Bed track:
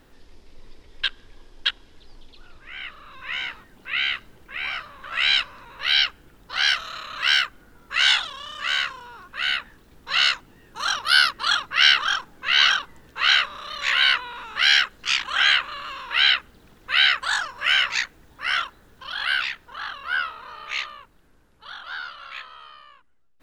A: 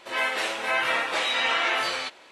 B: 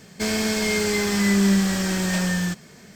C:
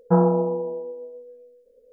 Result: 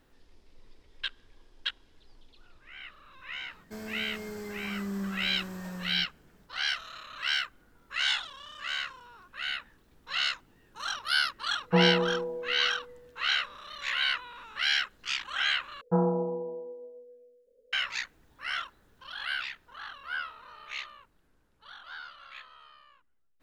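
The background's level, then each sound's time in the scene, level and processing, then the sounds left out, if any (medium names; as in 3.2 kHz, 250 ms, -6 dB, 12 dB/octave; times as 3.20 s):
bed track -10 dB
3.51 s: add B -16 dB + high-order bell 4.4 kHz -9.5 dB 2.5 oct
11.62 s: add C -6 dB
15.81 s: replace with C -8 dB
not used: A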